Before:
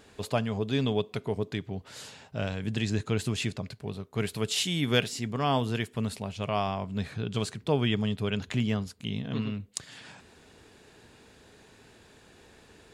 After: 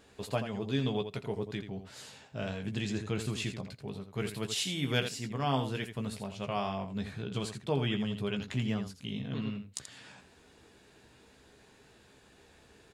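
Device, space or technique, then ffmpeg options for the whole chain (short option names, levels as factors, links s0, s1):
slapback doubling: -filter_complex "[0:a]asplit=3[s0][s1][s2];[s1]adelay=15,volume=0.473[s3];[s2]adelay=83,volume=0.355[s4];[s0][s3][s4]amix=inputs=3:normalize=0,volume=0.531"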